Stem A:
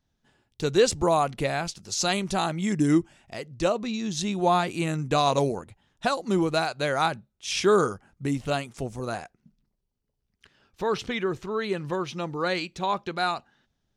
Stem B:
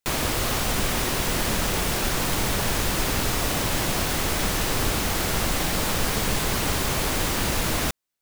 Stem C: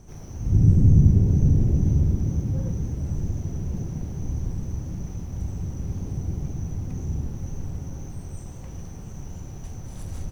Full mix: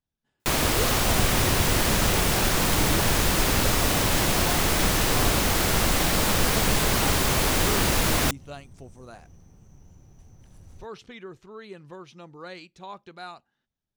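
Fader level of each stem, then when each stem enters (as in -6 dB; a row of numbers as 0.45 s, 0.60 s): -13.5 dB, +2.0 dB, -15.0 dB; 0.00 s, 0.40 s, 0.55 s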